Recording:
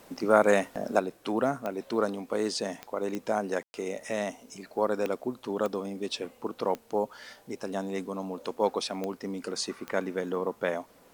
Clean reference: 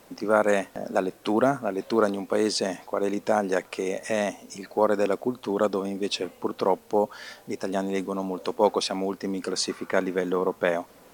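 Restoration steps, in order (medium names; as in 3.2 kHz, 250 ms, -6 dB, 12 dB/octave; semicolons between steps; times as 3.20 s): de-click; room tone fill 3.63–3.74 s; trim 0 dB, from 0.99 s +5.5 dB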